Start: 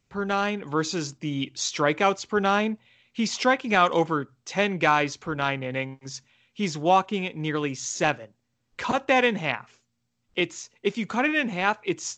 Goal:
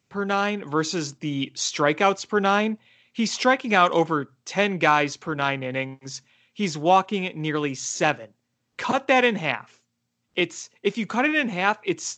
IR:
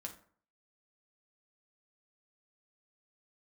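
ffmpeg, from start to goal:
-af "highpass=110,volume=2dB"

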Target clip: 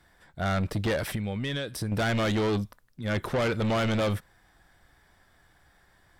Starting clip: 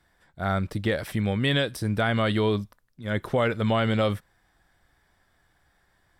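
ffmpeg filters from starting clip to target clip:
-filter_complex "[0:a]asettb=1/sr,asplit=3[a][b][c];[a]atrim=end=1.144[d];[b]atrim=start=1.14:end=1.92,asetpts=PTS-STARTPTS,afade=t=in:d=0.004:c=qsin,afade=t=out:st=0.776:d=0.004:c=qsin,acompressor=threshold=-30dB:ratio=16[e];[c]atrim=start=1.916[f];[d][e]acrossfade=d=0.004:c1=hsin:c2=qsin[g];[g][f]acrossfade=d=0.004:c1=qsin:c2=hsin,asoftclip=type=tanh:threshold=-27.5dB,volume=4.5dB"

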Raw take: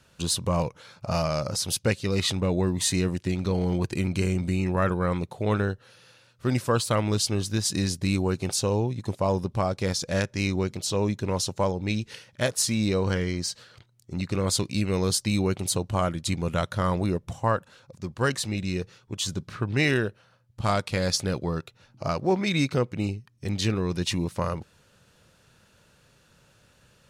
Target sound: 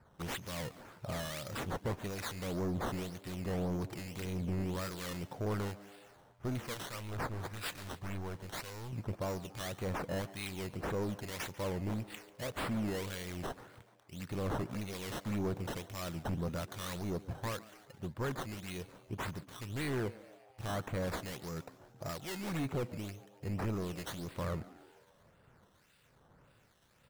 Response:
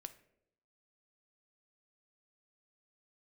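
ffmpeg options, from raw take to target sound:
-filter_complex "[0:a]asoftclip=type=tanh:threshold=-27.5dB,asettb=1/sr,asplit=3[a][b][c];[a]atrim=end=6.744[d];[b]atrim=start=6.74:end=8.93,asetpts=PTS-STARTPTS,afade=t=in:d=0.004:c=qsin,afade=t=out:st=2.186:d=0.004:c=qsin,equalizer=f=280:w=0.57:g=-10[e];[c]atrim=start=8.926[f];[d][e]acrossfade=d=0.004:c1=hsin:c2=qsin[g];[g][f]acrossfade=d=0.004:c1=qsin:c2=hsin,acrusher=samples=13:mix=1:aa=0.000001:lfo=1:lforange=13:lforate=1.8,acrossover=split=1700[h][i];[h]aeval=exprs='val(0)*(1-0.7/2+0.7/2*cos(2*PI*1.1*n/s))':c=same[j];[i]aeval=exprs='val(0)*(1-0.7/2-0.7/2*cos(2*PI*1.1*n/s))':c=same[k];[j][k]amix=inputs=2:normalize=0,asplit=6[l][m][n][o][p][q];[m]adelay=142,afreqshift=100,volume=-19dB[r];[n]adelay=284,afreqshift=200,volume=-23.6dB[s];[o]adelay=426,afreqshift=300,volume=-28.2dB[t];[p]adelay=568,afreqshift=400,volume=-32.7dB[u];[q]adelay=710,afreqshift=500,volume=-37.3dB[v];[l][r][s][t][u][v]amix=inputs=6:normalize=0,volume=-3dB"

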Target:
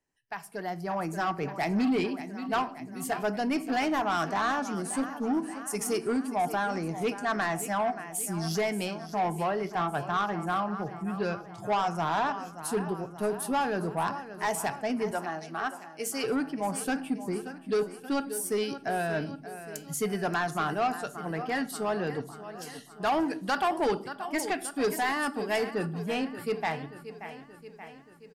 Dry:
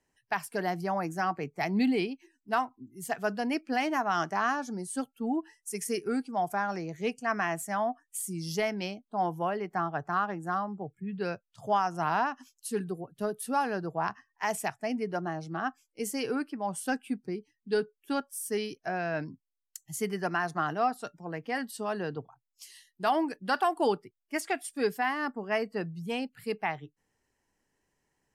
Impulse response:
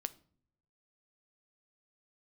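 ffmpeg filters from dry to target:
-filter_complex "[0:a]aecho=1:1:579|1158|1737|2316|2895|3474:0.178|0.105|0.0619|0.0365|0.0215|0.0127,dynaudnorm=f=110:g=17:m=11dB,asettb=1/sr,asplit=3[a][b][c];[a]atrim=end=15.114[d];[b]atrim=start=15.11:end=16.24,asetpts=PTS-STARTPTS,afade=t=in:d=0.004:c=qsin,afade=t=out:st=1.126:d=0.004:c=qsin,highpass=f=620:p=1[e];[c]atrim=start=16.236[f];[d][e]acrossfade=d=0.004:c1=hsin:c2=qsin[g];[g][f]acrossfade=d=0.004:c1=qsin:c2=hsin,asettb=1/sr,asplit=3[h][i][j];[h]atrim=end=24.844[k];[i]atrim=start=24.84:end=25.71,asetpts=PTS-STARTPTS,afade=t=in:d=0.004:c=qsin,afade=t=out:st=0.866:d=0.004:c=qsin,equalizer=f=9.6k:t=o:w=1.8:g=9[l];[j]atrim=start=25.706[m];[k][l]acrossfade=d=0.004:c1=hsin:c2=qsin[n];[n][m]acrossfade=d=0.004:c1=qsin:c2=hsin[o];[1:a]atrim=start_sample=2205[p];[o][p]afir=irnorm=-1:irlink=0,asoftclip=type=tanh:threshold=-16dB,volume=-5.5dB"

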